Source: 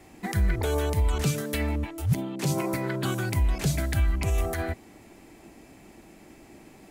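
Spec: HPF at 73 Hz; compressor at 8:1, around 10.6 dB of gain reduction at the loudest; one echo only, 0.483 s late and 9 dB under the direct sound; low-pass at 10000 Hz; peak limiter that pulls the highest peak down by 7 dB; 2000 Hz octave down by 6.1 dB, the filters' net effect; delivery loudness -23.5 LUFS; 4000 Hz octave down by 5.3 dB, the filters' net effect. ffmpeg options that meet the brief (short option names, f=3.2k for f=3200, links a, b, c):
-af "highpass=73,lowpass=10k,equalizer=f=2k:t=o:g=-7,equalizer=f=4k:t=o:g=-4.5,acompressor=threshold=-31dB:ratio=8,alimiter=level_in=4dB:limit=-24dB:level=0:latency=1,volume=-4dB,aecho=1:1:483:0.355,volume=14.5dB"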